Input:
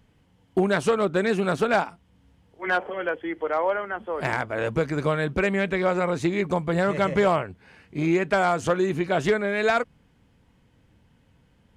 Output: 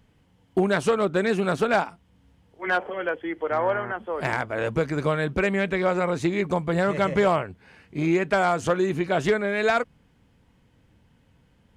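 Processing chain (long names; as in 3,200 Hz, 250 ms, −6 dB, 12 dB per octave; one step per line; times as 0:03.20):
0:03.50–0:03.91: hum with harmonics 120 Hz, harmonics 15, −36 dBFS −2 dB per octave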